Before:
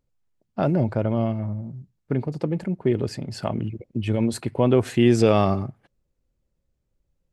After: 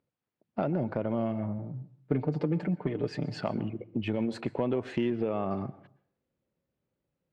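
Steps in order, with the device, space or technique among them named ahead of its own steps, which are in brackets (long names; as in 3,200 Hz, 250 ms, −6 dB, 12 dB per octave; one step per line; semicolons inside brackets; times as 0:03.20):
AM radio (band-pass filter 160–3,200 Hz; downward compressor 6 to 1, threshold −25 dBFS, peak gain reduction 12 dB; soft clipping −16.5 dBFS, distortion −23 dB)
0:01.58–0:03.41: comb filter 6.7 ms, depth 68%
0:05.10–0:05.51: high-frequency loss of the air 420 metres
dense smooth reverb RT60 0.56 s, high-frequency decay 0.55×, pre-delay 110 ms, DRR 18 dB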